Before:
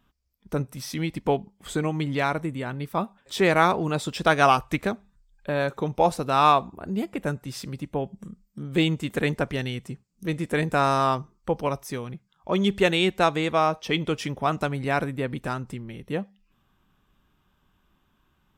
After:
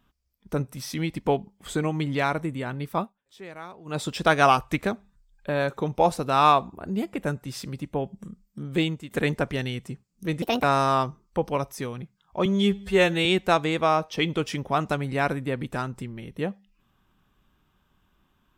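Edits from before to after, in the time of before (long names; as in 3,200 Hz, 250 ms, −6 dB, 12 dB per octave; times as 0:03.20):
0:02.98–0:04.00: duck −21 dB, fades 0.15 s
0:08.69–0:09.11: fade out linear, to −13.5 dB
0:10.42–0:10.75: play speed 154%
0:12.57–0:12.97: time-stretch 2×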